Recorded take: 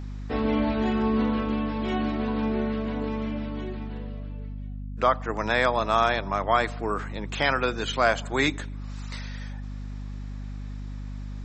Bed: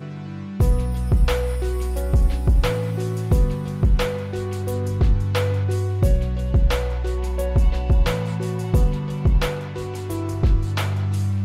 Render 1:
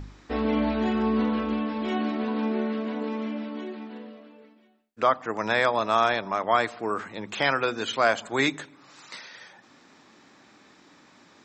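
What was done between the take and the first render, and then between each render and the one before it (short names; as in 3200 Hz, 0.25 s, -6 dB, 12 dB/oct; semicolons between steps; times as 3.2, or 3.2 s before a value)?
de-hum 50 Hz, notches 5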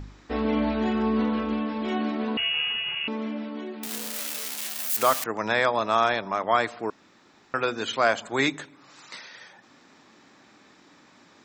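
2.37–3.08 inverted band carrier 3100 Hz; 3.83–5.24 switching spikes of -17.5 dBFS; 6.9–7.54 room tone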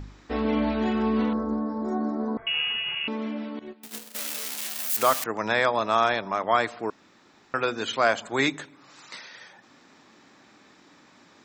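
1.33–2.47 Butterworth band-stop 2800 Hz, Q 0.55; 3.59–4.15 gate -35 dBFS, range -17 dB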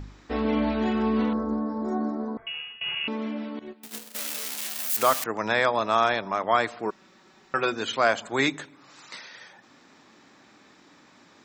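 2.02–2.81 fade out, to -21 dB; 6.85–7.74 comb 5.3 ms, depth 56%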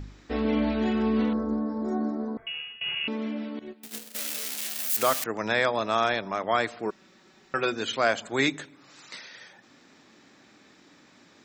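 bell 1000 Hz -5 dB 0.95 oct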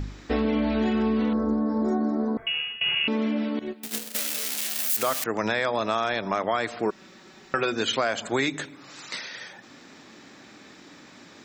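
in parallel at +3 dB: limiter -18 dBFS, peak gain reduction 8.5 dB; on the sum: compressor, threshold -21 dBFS, peak gain reduction 8 dB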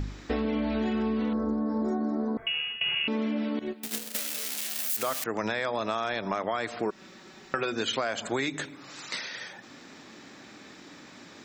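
compressor 2.5:1, threshold -27 dBFS, peak gain reduction 5.5 dB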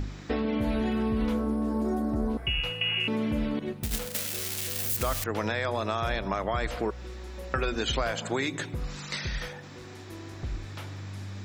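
add bed -17 dB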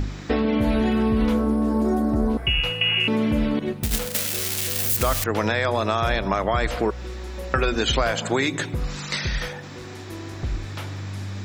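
gain +7 dB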